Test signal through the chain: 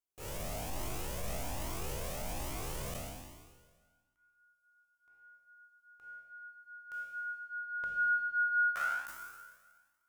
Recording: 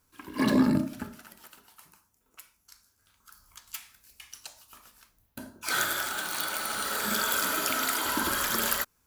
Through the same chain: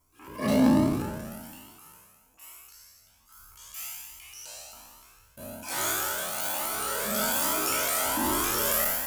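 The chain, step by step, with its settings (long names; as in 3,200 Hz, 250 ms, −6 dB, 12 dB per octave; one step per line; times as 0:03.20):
peak hold with a decay on every bin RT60 1.56 s
graphic EQ with 15 bands 630 Hz +5 dB, 1,600 Hz −7 dB, 4,000 Hz −7 dB
transient designer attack −7 dB, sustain +6 dB
flanger whose copies keep moving one way rising 1.2 Hz
level +3.5 dB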